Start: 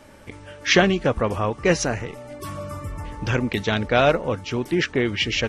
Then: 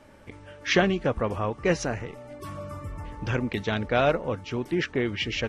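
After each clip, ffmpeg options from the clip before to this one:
-af "highshelf=f=4000:g=-6.5,volume=0.596"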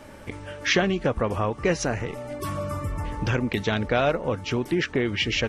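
-af "acompressor=threshold=0.0224:ratio=2,crystalizer=i=0.5:c=0,volume=2.51"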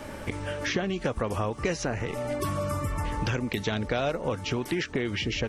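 -filter_complex "[0:a]acrossover=split=790|4200[s0][s1][s2];[s0]acompressor=threshold=0.02:ratio=4[s3];[s1]acompressor=threshold=0.00891:ratio=4[s4];[s2]acompressor=threshold=0.00501:ratio=4[s5];[s3][s4][s5]amix=inputs=3:normalize=0,volume=1.88"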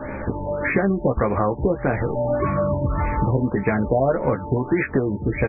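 -filter_complex "[0:a]asplit=2[s0][s1];[s1]adelay=15,volume=0.501[s2];[s0][s2]amix=inputs=2:normalize=0,afftfilt=real='re*lt(b*sr/1024,990*pow(2600/990,0.5+0.5*sin(2*PI*1.7*pts/sr)))':imag='im*lt(b*sr/1024,990*pow(2600/990,0.5+0.5*sin(2*PI*1.7*pts/sr)))':win_size=1024:overlap=0.75,volume=2.51"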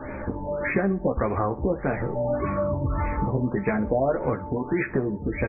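-af "flanger=delay=2.4:depth=3.2:regen=-60:speed=0.71:shape=triangular,aecho=1:1:65|130|195:0.133|0.0453|0.0154"

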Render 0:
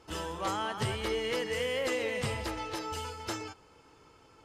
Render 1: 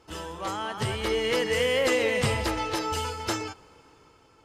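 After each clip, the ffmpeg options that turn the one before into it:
-af "dynaudnorm=f=300:g=7:m=2.51"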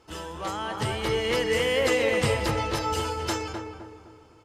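-filter_complex "[0:a]asplit=2[s0][s1];[s1]adelay=256,lowpass=f=1200:p=1,volume=0.631,asplit=2[s2][s3];[s3]adelay=256,lowpass=f=1200:p=1,volume=0.45,asplit=2[s4][s5];[s5]adelay=256,lowpass=f=1200:p=1,volume=0.45,asplit=2[s6][s7];[s7]adelay=256,lowpass=f=1200:p=1,volume=0.45,asplit=2[s8][s9];[s9]adelay=256,lowpass=f=1200:p=1,volume=0.45,asplit=2[s10][s11];[s11]adelay=256,lowpass=f=1200:p=1,volume=0.45[s12];[s0][s2][s4][s6][s8][s10][s12]amix=inputs=7:normalize=0"

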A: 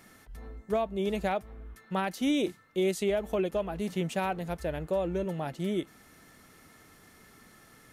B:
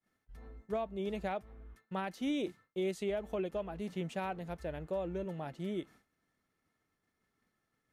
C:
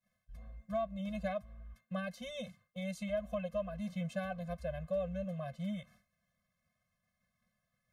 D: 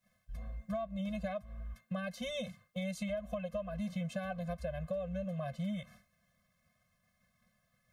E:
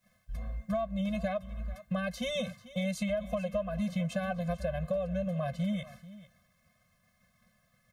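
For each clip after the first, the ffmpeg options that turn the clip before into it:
-af "highshelf=f=6900:g=-9.5,agate=range=0.0224:threshold=0.00562:ratio=3:detection=peak,volume=0.447"
-af "afftfilt=real='re*eq(mod(floor(b*sr/1024/250),2),0)':imag='im*eq(mod(floor(b*sr/1024/250),2),0)':win_size=1024:overlap=0.75,volume=1.26"
-af "acompressor=threshold=0.00794:ratio=6,volume=2.24"
-af "aecho=1:1:440:0.133,volume=1.88"

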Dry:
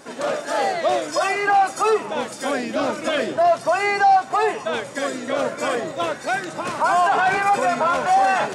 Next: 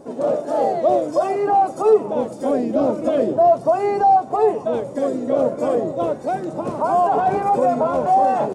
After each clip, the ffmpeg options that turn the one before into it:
-af "firequalizer=gain_entry='entry(530,0);entry(1600,-22);entry(9800,-16)':delay=0.05:min_phase=1,volume=2"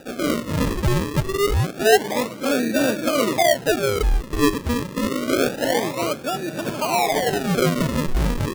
-af "tiltshelf=f=1100:g=7.5,acrusher=samples=41:mix=1:aa=0.000001:lfo=1:lforange=41:lforate=0.27,volume=0.473"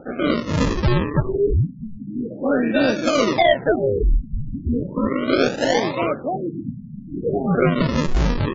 -filter_complex "[0:a]asplit=2[s0][s1];[s1]aeval=exprs='clip(val(0),-1,0.106)':c=same,volume=0.335[s2];[s0][s2]amix=inputs=2:normalize=0,afftfilt=real='re*lt(b*sr/1024,240*pow(7500/240,0.5+0.5*sin(2*PI*0.4*pts/sr)))':imag='im*lt(b*sr/1024,240*pow(7500/240,0.5+0.5*sin(2*PI*0.4*pts/sr)))':win_size=1024:overlap=0.75"

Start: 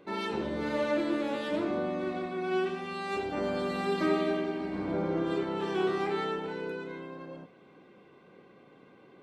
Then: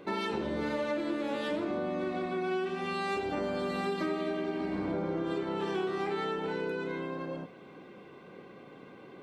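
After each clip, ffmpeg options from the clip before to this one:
-af "acompressor=threshold=0.0158:ratio=6,volume=2"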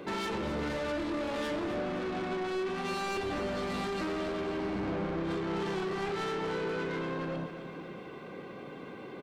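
-filter_complex "[0:a]acrossover=split=110[s0][s1];[s1]asoftclip=type=tanh:threshold=0.0126[s2];[s0][s2]amix=inputs=2:normalize=0,aecho=1:1:260|520|780|1040|1300|1560:0.266|0.149|0.0834|0.0467|0.0262|0.0147,volume=2"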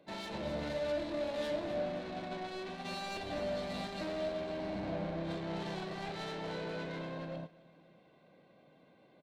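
-af "agate=range=0.2:threshold=0.0178:ratio=16:detection=peak,equalizer=f=160:t=o:w=0.33:g=4,equalizer=f=400:t=o:w=0.33:g=-8,equalizer=f=630:t=o:w=0.33:g=11,equalizer=f=1250:t=o:w=0.33:g=-7,equalizer=f=4000:t=o:w=0.33:g=7,volume=0.531"

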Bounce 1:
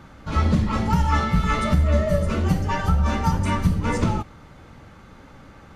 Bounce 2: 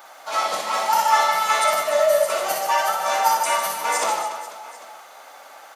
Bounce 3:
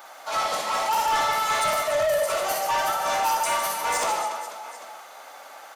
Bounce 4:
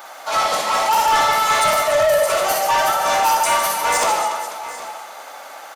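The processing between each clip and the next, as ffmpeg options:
-af "highpass=f=690:t=q:w=3.9,aemphasis=mode=production:type=riaa,aecho=1:1:60|150|285|487.5|791.2:0.631|0.398|0.251|0.158|0.1"
-af "asoftclip=type=tanh:threshold=0.112"
-af "aecho=1:1:761:0.133,volume=2.24"

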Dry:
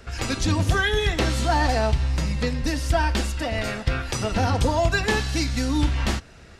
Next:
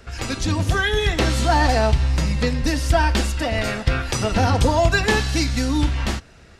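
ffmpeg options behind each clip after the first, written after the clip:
-af "dynaudnorm=f=220:g=9:m=1.58"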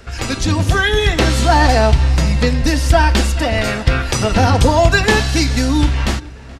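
-filter_complex "[0:a]asplit=2[s0][s1];[s1]adelay=426,lowpass=f=3100:p=1,volume=0.0841,asplit=2[s2][s3];[s3]adelay=426,lowpass=f=3100:p=1,volume=0.54,asplit=2[s4][s5];[s5]adelay=426,lowpass=f=3100:p=1,volume=0.54,asplit=2[s6][s7];[s7]adelay=426,lowpass=f=3100:p=1,volume=0.54[s8];[s0][s2][s4][s6][s8]amix=inputs=5:normalize=0,volume=1.88"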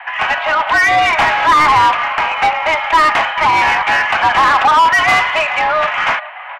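-filter_complex "[0:a]highpass=f=430:t=q:w=0.5412,highpass=f=430:t=q:w=1.307,lowpass=f=2500:t=q:w=0.5176,lowpass=f=2500:t=q:w=0.7071,lowpass=f=2500:t=q:w=1.932,afreqshift=310,asplit=2[s0][s1];[s1]highpass=f=720:p=1,volume=14.1,asoftclip=type=tanh:threshold=0.75[s2];[s0][s2]amix=inputs=2:normalize=0,lowpass=f=2100:p=1,volume=0.501"

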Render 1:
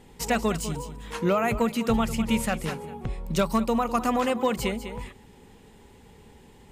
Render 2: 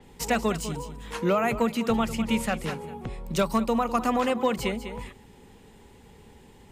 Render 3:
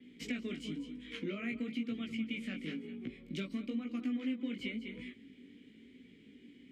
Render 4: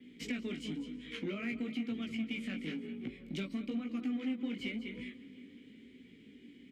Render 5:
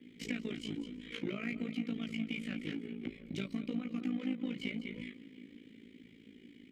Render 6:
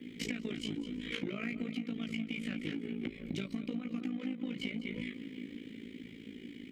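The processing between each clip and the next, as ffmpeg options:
-filter_complex "[0:a]acrossover=split=170|490|2100[s0][s1][s2][s3];[s0]asoftclip=type=tanh:threshold=0.0211[s4];[s4][s1][s2][s3]amix=inputs=4:normalize=0,adynamicequalizer=threshold=0.00501:dfrequency=6000:dqfactor=0.7:tfrequency=6000:tqfactor=0.7:attack=5:release=100:ratio=0.375:range=2:mode=cutabove:tftype=highshelf"
-filter_complex "[0:a]flanger=delay=16:depth=5.2:speed=1,asplit=3[s0][s1][s2];[s0]bandpass=f=270:t=q:w=8,volume=1[s3];[s1]bandpass=f=2290:t=q:w=8,volume=0.501[s4];[s2]bandpass=f=3010:t=q:w=8,volume=0.355[s5];[s3][s4][s5]amix=inputs=3:normalize=0,acompressor=threshold=0.00398:ratio=2.5,volume=3.16"
-filter_complex "[0:a]asplit=2[s0][s1];[s1]adelay=355,lowpass=f=3700:p=1,volume=0.112,asplit=2[s2][s3];[s3]adelay=355,lowpass=f=3700:p=1,volume=0.54,asplit=2[s4][s5];[s5]adelay=355,lowpass=f=3700:p=1,volume=0.54,asplit=2[s6][s7];[s7]adelay=355,lowpass=f=3700:p=1,volume=0.54[s8];[s0][s2][s4][s6][s8]amix=inputs=5:normalize=0,asplit=2[s9][s10];[s10]asoftclip=type=hard:threshold=0.0126,volume=0.398[s11];[s9][s11]amix=inputs=2:normalize=0,volume=0.841"
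-af "tremolo=f=55:d=0.788,volume=1.41"
-af "acompressor=threshold=0.00708:ratio=6,volume=2.66"

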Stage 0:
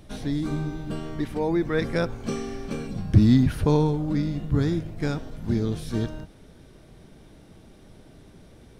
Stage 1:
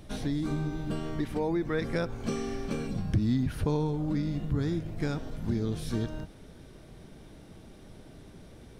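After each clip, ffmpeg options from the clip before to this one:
-af "acompressor=threshold=0.0398:ratio=2.5"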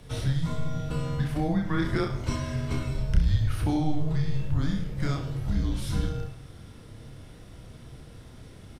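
-filter_complex "[0:a]afreqshift=-150,asplit=2[s0][s1];[s1]aecho=0:1:30|64.5|104.2|149.8|202.3:0.631|0.398|0.251|0.158|0.1[s2];[s0][s2]amix=inputs=2:normalize=0,volume=1.26"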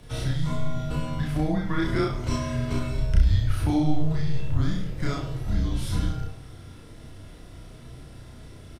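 -filter_complex "[0:a]asplit=2[s0][s1];[s1]adelay=33,volume=0.794[s2];[s0][s2]amix=inputs=2:normalize=0"

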